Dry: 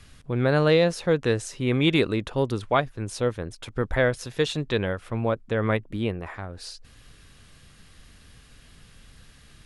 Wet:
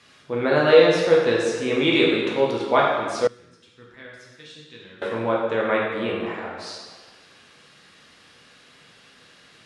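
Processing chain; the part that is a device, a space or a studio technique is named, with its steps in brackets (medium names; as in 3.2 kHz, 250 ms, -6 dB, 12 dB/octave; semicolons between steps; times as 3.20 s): supermarket ceiling speaker (band-pass 280–6500 Hz; reverberation RT60 1.6 s, pre-delay 7 ms, DRR -4.5 dB); 3.27–5.02 s: amplifier tone stack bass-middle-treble 6-0-2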